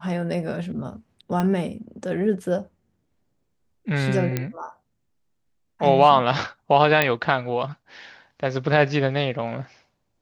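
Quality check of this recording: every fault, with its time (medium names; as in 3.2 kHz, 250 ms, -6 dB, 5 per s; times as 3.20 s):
1.40 s: pop -12 dBFS
4.37 s: pop -10 dBFS
7.02 s: pop -5 dBFS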